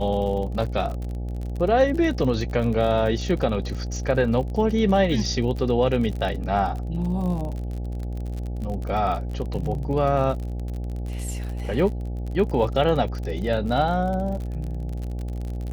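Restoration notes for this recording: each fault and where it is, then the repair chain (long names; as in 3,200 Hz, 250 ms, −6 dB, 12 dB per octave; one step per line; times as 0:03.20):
mains buzz 60 Hz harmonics 14 −29 dBFS
surface crackle 47 per second −30 dBFS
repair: click removal
hum removal 60 Hz, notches 14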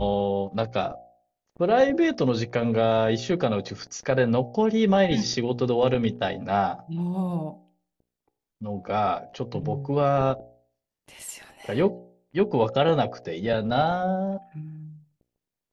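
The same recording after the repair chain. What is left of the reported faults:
none of them is left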